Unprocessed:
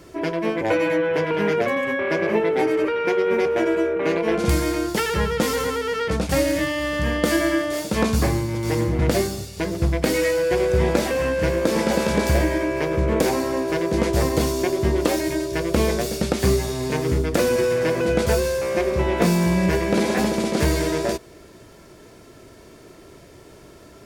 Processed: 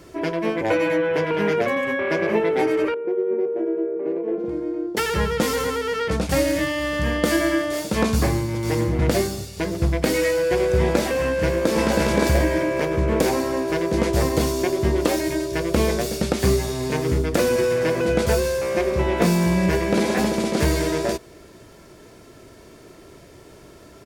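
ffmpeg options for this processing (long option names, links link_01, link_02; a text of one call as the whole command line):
ffmpeg -i in.wav -filter_complex "[0:a]asettb=1/sr,asplit=3[link_01][link_02][link_03];[link_01]atrim=end=2.944[link_04];[link_02]atrim=start=2.94:end=4.97,asetpts=PTS-STARTPTS,afade=type=in:duration=0.004:curve=qsin,afade=type=out:start_time=2.026:duration=0.004:curve=qsin,bandpass=frequency=380:width_type=q:width=2.7[link_05];[link_03]atrim=start=4.966[link_06];[link_04][link_05]acrossfade=duration=0.004:curve1=hsin:curve2=qsin[link_07];[link_07][link_06]acrossfade=duration=0.004:curve1=qsin:curve2=hsin,asplit=2[link_08][link_09];[link_09]afade=type=in:start_time=11.2:duration=0.01,afade=type=out:start_time=11.71:duration=0.01,aecho=0:1:570|1140|1710|2280|2850:0.794328|0.317731|0.127093|0.050837|0.0203348[link_10];[link_08][link_10]amix=inputs=2:normalize=0" out.wav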